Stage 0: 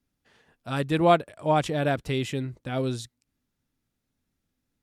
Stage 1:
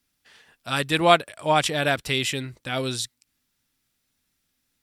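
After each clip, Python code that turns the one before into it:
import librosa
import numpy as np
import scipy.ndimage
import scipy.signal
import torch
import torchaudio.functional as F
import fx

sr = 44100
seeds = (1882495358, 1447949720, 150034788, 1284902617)

y = fx.tilt_shelf(x, sr, db=-7.5, hz=1100.0)
y = fx.notch(y, sr, hz=6600.0, q=19.0)
y = F.gain(torch.from_numpy(y), 5.0).numpy()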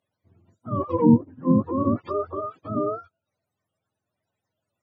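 y = fx.octave_mirror(x, sr, pivot_hz=400.0)
y = scipy.signal.sosfilt(scipy.signal.butter(2, 190.0, 'highpass', fs=sr, output='sos'), y)
y = fx.env_lowpass_down(y, sr, base_hz=760.0, full_db=-19.5)
y = F.gain(torch.from_numpy(y), 4.0).numpy()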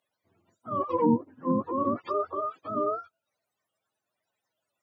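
y = fx.highpass(x, sr, hz=770.0, slope=6)
y = F.gain(torch.from_numpy(y), 2.5).numpy()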